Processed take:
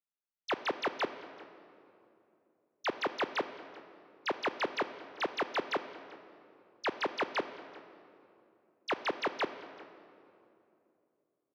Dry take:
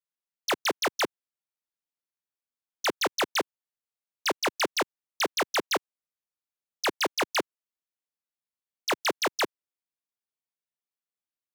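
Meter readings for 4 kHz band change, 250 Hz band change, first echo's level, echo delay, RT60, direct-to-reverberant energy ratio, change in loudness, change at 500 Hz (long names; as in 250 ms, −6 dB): −11.0 dB, −4.5 dB, −22.0 dB, 388 ms, 2.8 s, 10.5 dB, −7.0 dB, −4.5 dB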